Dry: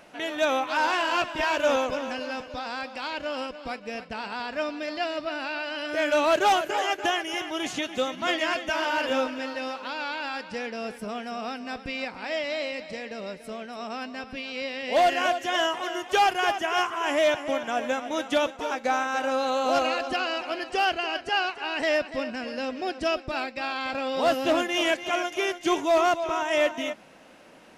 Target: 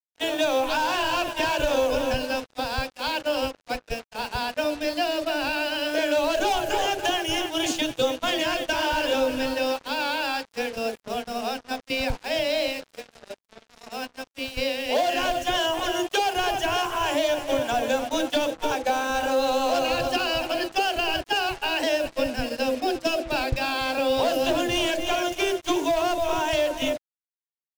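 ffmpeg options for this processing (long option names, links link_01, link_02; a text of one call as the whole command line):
ffmpeg -i in.wav -filter_complex "[0:a]asoftclip=type=tanh:threshold=-20dB,lowshelf=frequency=76:gain=12,acrossover=split=180|560[link_01][link_02][link_03];[link_02]adelay=40[link_04];[link_01]adelay=240[link_05];[link_05][link_04][link_03]amix=inputs=3:normalize=0,agate=range=-16dB:threshold=-34dB:ratio=16:detection=peak,bandreject=frequency=164.5:width_type=h:width=4,bandreject=frequency=329:width_type=h:width=4,bandreject=frequency=493.5:width_type=h:width=4,bandreject=frequency=658:width_type=h:width=4,bandreject=frequency=822.5:width_type=h:width=4,acompressor=threshold=-29dB:ratio=6,equalizer=frequency=125:width_type=o:width=0.33:gain=7,equalizer=frequency=200:width_type=o:width=0.33:gain=-10,equalizer=frequency=500:width_type=o:width=0.33:gain=3,equalizer=frequency=1250:width_type=o:width=0.33:gain=-10,equalizer=frequency=2000:width_type=o:width=0.33:gain=-10,acontrast=46,acrusher=bits=6:mix=0:aa=0.5,volume=4dB" out.wav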